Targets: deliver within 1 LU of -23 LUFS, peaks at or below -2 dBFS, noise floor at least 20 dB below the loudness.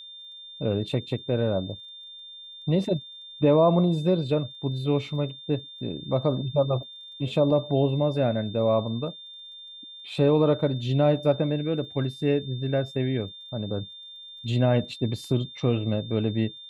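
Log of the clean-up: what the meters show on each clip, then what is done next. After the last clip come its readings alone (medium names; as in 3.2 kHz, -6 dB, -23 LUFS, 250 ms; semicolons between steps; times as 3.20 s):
tick rate 24 per s; steady tone 3.6 kHz; tone level -41 dBFS; loudness -25.5 LUFS; peak level -9.0 dBFS; loudness target -23.0 LUFS
-> de-click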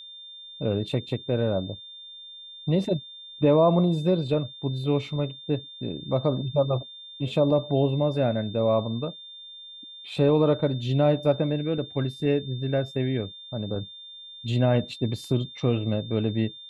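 tick rate 0 per s; steady tone 3.6 kHz; tone level -41 dBFS
-> band-stop 3.6 kHz, Q 30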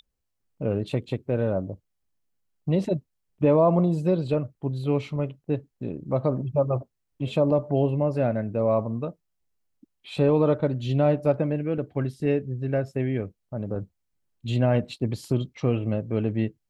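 steady tone not found; loudness -26.0 LUFS; peak level -9.5 dBFS; loudness target -23.0 LUFS
-> trim +3 dB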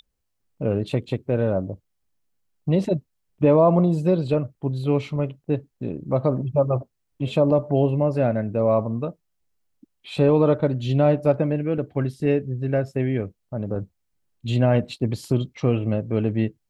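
loudness -23.0 LUFS; peak level -6.5 dBFS; noise floor -75 dBFS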